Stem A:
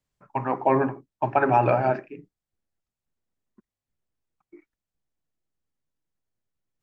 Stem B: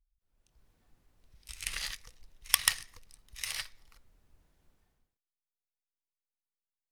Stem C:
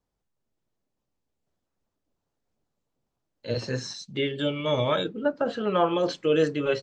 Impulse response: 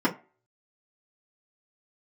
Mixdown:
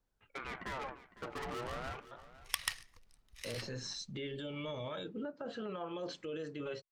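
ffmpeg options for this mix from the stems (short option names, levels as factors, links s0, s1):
-filter_complex "[0:a]equalizer=f=1600:t=o:w=1.7:g=4,aeval=exprs='(tanh(31.6*val(0)+0.75)-tanh(0.75))/31.6':c=same,aeval=exprs='val(0)*sin(2*PI*980*n/s+980*0.55/0.35*sin(2*PI*0.35*n/s))':c=same,volume=0.422,asplit=3[s0][s1][s2];[s1]volume=0.15[s3];[1:a]highshelf=f=6100:g=-8,volume=0.447[s4];[2:a]acompressor=threshold=0.0282:ratio=16,alimiter=level_in=2:limit=0.0631:level=0:latency=1:release=11,volume=0.501,volume=0.668[s5];[s2]apad=whole_len=304858[s6];[s4][s6]sidechaincompress=threshold=0.00141:ratio=8:attack=16:release=198[s7];[s3]aecho=0:1:506:1[s8];[s0][s7][s5][s8]amix=inputs=4:normalize=0"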